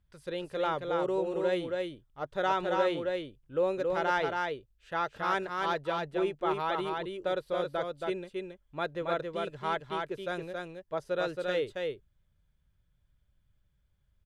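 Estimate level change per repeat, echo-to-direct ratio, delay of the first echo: no regular repeats, -3.5 dB, 274 ms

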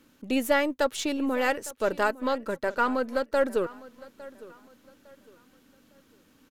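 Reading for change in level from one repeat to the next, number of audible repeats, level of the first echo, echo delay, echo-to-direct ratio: -10.0 dB, 2, -19.5 dB, 857 ms, -19.0 dB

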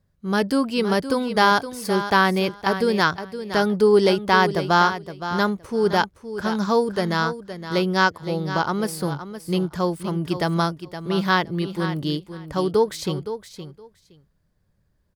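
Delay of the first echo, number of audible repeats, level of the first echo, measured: 517 ms, 2, -11.0 dB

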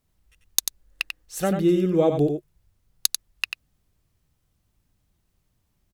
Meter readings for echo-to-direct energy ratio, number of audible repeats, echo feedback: -6.5 dB, 1, no regular repeats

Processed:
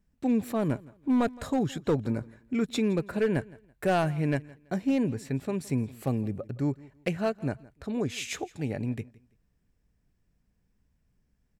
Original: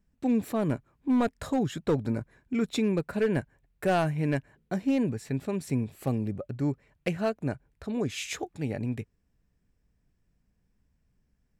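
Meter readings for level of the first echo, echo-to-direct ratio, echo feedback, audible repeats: -22.0 dB, -21.5 dB, 26%, 2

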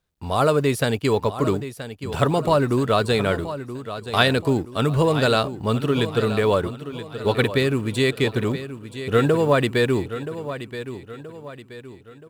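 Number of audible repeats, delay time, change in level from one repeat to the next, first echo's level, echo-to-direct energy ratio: 4, 976 ms, -7.5 dB, -12.0 dB, -11.0 dB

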